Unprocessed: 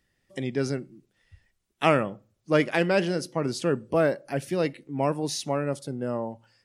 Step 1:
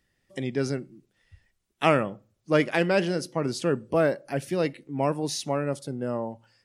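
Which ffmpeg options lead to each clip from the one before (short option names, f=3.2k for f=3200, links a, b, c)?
-af anull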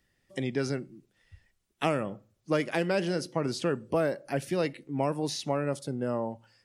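-filter_complex "[0:a]acrossover=split=710|5000[a][b][c];[a]acompressor=threshold=-26dB:ratio=4[d];[b]acompressor=threshold=-32dB:ratio=4[e];[c]acompressor=threshold=-43dB:ratio=4[f];[d][e][f]amix=inputs=3:normalize=0"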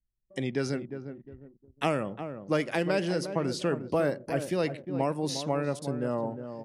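-filter_complex "[0:a]asplit=2[a][b];[b]adelay=356,lowpass=f=1k:p=1,volume=-8.5dB,asplit=2[c][d];[d]adelay=356,lowpass=f=1k:p=1,volume=0.35,asplit=2[e][f];[f]adelay=356,lowpass=f=1k:p=1,volume=0.35,asplit=2[g][h];[h]adelay=356,lowpass=f=1k:p=1,volume=0.35[i];[a][c][e][g][i]amix=inputs=5:normalize=0,anlmdn=0.00251"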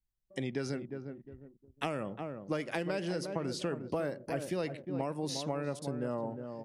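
-af "acompressor=threshold=-27dB:ratio=6,volume=-3dB"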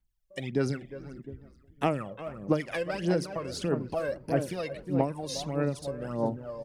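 -filter_complex "[0:a]aphaser=in_gain=1:out_gain=1:delay=1.9:decay=0.69:speed=1.6:type=sinusoidal,asplit=4[a][b][c][d];[b]adelay=433,afreqshift=-97,volume=-22dB[e];[c]adelay=866,afreqshift=-194,volume=-30.6dB[f];[d]adelay=1299,afreqshift=-291,volume=-39.3dB[g];[a][e][f][g]amix=inputs=4:normalize=0"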